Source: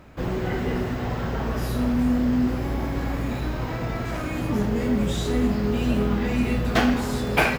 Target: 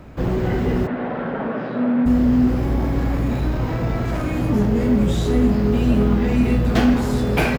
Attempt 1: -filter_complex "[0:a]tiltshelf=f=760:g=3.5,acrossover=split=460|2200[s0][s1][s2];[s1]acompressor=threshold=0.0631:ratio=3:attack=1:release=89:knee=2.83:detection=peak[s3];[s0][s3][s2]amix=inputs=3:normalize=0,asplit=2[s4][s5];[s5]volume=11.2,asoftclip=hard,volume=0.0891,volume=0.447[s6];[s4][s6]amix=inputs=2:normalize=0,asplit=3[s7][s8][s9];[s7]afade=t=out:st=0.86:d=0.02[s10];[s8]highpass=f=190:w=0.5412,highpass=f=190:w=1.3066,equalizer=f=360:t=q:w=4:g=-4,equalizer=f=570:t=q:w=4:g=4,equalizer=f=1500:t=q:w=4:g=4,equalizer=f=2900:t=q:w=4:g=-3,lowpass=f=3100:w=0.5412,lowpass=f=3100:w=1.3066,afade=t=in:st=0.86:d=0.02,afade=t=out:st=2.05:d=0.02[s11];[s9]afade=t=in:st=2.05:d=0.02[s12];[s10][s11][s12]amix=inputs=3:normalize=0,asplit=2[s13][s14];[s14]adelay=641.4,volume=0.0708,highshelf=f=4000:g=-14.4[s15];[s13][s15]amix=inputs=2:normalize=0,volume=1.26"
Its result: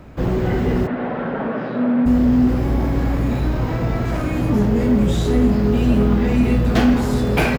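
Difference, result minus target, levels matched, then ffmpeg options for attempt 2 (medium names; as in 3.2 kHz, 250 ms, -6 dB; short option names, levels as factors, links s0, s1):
overload inside the chain: distortion -5 dB
-filter_complex "[0:a]tiltshelf=f=760:g=3.5,acrossover=split=460|2200[s0][s1][s2];[s1]acompressor=threshold=0.0631:ratio=3:attack=1:release=89:knee=2.83:detection=peak[s3];[s0][s3][s2]amix=inputs=3:normalize=0,asplit=2[s4][s5];[s5]volume=31.6,asoftclip=hard,volume=0.0316,volume=0.447[s6];[s4][s6]amix=inputs=2:normalize=0,asplit=3[s7][s8][s9];[s7]afade=t=out:st=0.86:d=0.02[s10];[s8]highpass=f=190:w=0.5412,highpass=f=190:w=1.3066,equalizer=f=360:t=q:w=4:g=-4,equalizer=f=570:t=q:w=4:g=4,equalizer=f=1500:t=q:w=4:g=4,equalizer=f=2900:t=q:w=4:g=-3,lowpass=f=3100:w=0.5412,lowpass=f=3100:w=1.3066,afade=t=in:st=0.86:d=0.02,afade=t=out:st=2.05:d=0.02[s11];[s9]afade=t=in:st=2.05:d=0.02[s12];[s10][s11][s12]amix=inputs=3:normalize=0,asplit=2[s13][s14];[s14]adelay=641.4,volume=0.0708,highshelf=f=4000:g=-14.4[s15];[s13][s15]amix=inputs=2:normalize=0,volume=1.26"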